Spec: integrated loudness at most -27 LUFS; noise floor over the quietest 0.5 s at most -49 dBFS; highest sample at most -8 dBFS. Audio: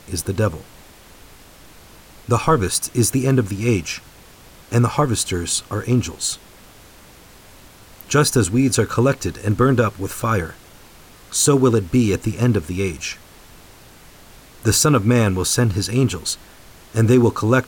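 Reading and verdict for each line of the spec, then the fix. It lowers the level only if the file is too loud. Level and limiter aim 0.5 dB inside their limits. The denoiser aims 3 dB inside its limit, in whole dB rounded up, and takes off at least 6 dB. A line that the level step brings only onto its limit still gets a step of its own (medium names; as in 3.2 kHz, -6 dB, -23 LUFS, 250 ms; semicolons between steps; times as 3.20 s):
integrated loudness -19.0 LUFS: fail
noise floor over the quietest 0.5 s -45 dBFS: fail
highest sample -4.5 dBFS: fail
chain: trim -8.5 dB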